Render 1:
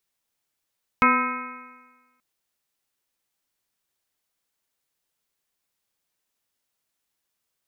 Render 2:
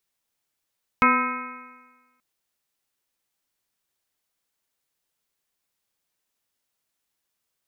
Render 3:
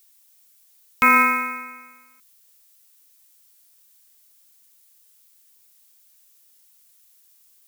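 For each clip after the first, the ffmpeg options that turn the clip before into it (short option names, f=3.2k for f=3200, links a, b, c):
-af anull
-af "acrusher=bits=9:mode=log:mix=0:aa=0.000001,crystalizer=i=5.5:c=0,alimiter=limit=-10dB:level=0:latency=1:release=21,volume=4.5dB"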